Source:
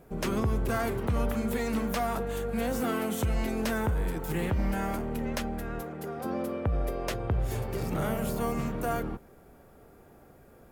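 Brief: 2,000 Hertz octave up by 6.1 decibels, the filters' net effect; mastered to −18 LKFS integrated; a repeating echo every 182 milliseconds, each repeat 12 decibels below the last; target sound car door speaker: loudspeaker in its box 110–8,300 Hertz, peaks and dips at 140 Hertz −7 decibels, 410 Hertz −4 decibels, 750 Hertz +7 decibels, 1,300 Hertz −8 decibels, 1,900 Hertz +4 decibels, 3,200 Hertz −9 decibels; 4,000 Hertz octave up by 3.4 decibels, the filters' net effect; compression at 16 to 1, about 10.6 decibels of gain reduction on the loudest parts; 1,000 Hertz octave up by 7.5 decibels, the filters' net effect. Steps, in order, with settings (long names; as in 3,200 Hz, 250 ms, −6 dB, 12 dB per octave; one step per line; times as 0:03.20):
parametric band 1,000 Hz +6 dB
parametric band 2,000 Hz +4 dB
parametric band 4,000 Hz +7.5 dB
downward compressor 16 to 1, threshold −33 dBFS
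loudspeaker in its box 110–8,300 Hz, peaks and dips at 140 Hz −7 dB, 410 Hz −4 dB, 750 Hz +7 dB, 1,300 Hz −8 dB, 1,900 Hz +4 dB, 3,200 Hz −9 dB
repeating echo 182 ms, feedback 25%, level −12 dB
level +20 dB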